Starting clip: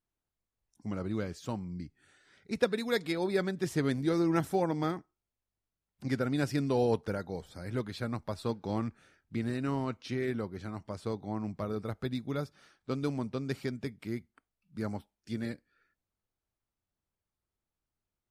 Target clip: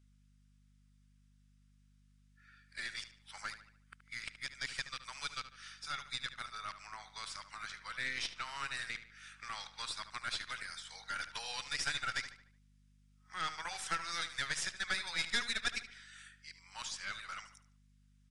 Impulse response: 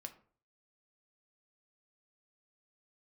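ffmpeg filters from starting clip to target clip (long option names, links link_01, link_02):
-filter_complex "[0:a]areverse,highpass=frequency=1400:width=0.5412,highpass=frequency=1400:width=1.3066,equalizer=frequency=4600:width_type=o:width=0.93:gain=3.5,bandreject=frequency=4300:width=12,asplit=2[link_01][link_02];[link_02]acompressor=threshold=-56dB:ratio=6,volume=-0.5dB[link_03];[link_01][link_03]amix=inputs=2:normalize=0,aeval=exprs='(tanh(50.1*val(0)+0.55)-tanh(0.55))/50.1':channel_layout=same,aeval=exprs='val(0)+0.000251*(sin(2*PI*50*n/s)+sin(2*PI*2*50*n/s)/2+sin(2*PI*3*50*n/s)/3+sin(2*PI*4*50*n/s)/4+sin(2*PI*5*50*n/s)/5)':channel_layout=same,asplit=2[link_04][link_05];[link_05]adelay=74,lowpass=frequency=4500:poles=1,volume=-11.5dB,asplit=2[link_06][link_07];[link_07]adelay=74,lowpass=frequency=4500:poles=1,volume=0.45,asplit=2[link_08][link_09];[link_09]adelay=74,lowpass=frequency=4500:poles=1,volume=0.45,asplit=2[link_10][link_11];[link_11]adelay=74,lowpass=frequency=4500:poles=1,volume=0.45,asplit=2[link_12][link_13];[link_13]adelay=74,lowpass=frequency=4500:poles=1,volume=0.45[link_14];[link_06][link_08][link_10][link_12][link_14]amix=inputs=5:normalize=0[link_15];[link_04][link_15]amix=inputs=2:normalize=0,aresample=22050,aresample=44100,volume=7dB"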